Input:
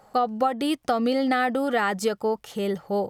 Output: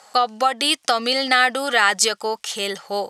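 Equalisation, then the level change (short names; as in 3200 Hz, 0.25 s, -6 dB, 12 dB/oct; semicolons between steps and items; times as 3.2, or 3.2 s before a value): weighting filter ITU-R 468; +6.0 dB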